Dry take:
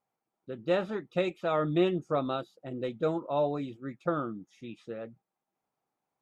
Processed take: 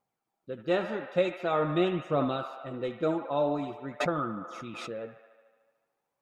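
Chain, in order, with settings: band-limited delay 74 ms, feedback 72%, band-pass 1400 Hz, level -7 dB; flange 0.45 Hz, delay 0 ms, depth 4 ms, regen +62%; 4–4.91 backwards sustainer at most 24 dB/s; gain +5 dB

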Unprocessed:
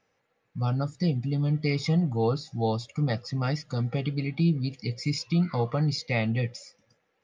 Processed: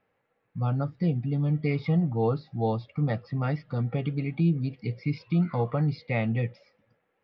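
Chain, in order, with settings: Bessel low-pass 2300 Hz, order 8

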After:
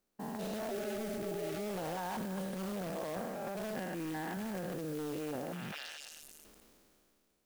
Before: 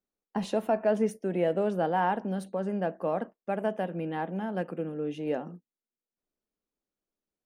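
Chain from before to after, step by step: stepped spectrum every 0.2 s; 3.76–4.37 ten-band EQ 125 Hz -10 dB, 250 Hz +8 dB, 500 Hz -5 dB, 2000 Hz +8 dB; in parallel at -7 dB: wrapped overs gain 28 dB; on the sum: delay with a stepping band-pass 0.226 s, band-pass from 1500 Hz, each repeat 0.7 oct, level -10 dB; transient shaper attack -7 dB, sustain +12 dB; 0.74–1.58 spectral repair 360–1100 Hz after; compressor 4:1, threshold -46 dBFS, peak gain reduction 17.5 dB; modulation noise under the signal 16 dB; sustainer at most 21 dB/s; gain +6 dB

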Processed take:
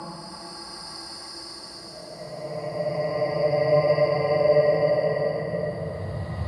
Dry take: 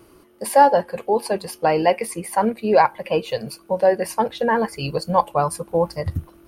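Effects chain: Paulstretch 35×, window 0.10 s, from 5.88; speaker cabinet 120–9600 Hz, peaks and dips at 670 Hz +9 dB, 1200 Hz +8 dB, 5800 Hz -3 dB

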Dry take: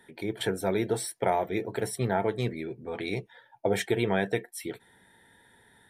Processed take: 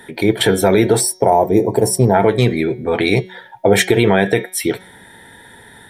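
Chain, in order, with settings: de-hum 185.4 Hz, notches 37; spectral gain 1–2.14, 1100–4400 Hz -16 dB; maximiser +19 dB; gain -1 dB

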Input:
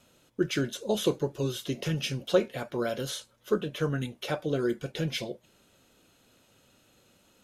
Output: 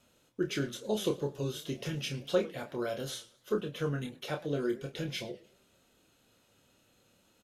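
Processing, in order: doubler 28 ms -6.5 dB; warbling echo 0.105 s, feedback 36%, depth 215 cents, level -20 dB; gain -5.5 dB

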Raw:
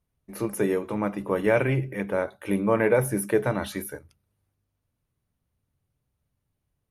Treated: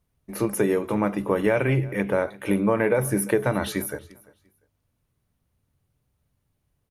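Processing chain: compressor, threshold -22 dBFS, peak gain reduction 7 dB; on a send: feedback echo 0.346 s, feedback 21%, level -22.5 dB; on the sum: gain +5 dB

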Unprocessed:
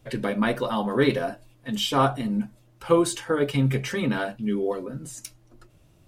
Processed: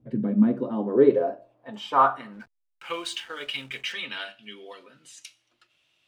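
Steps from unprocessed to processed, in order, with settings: band-pass sweep 210 Hz -> 3000 Hz, 0.38–3.08; Schroeder reverb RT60 0.41 s, combs from 26 ms, DRR 17 dB; 2.33–3.93 backlash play -52 dBFS; gain +6.5 dB

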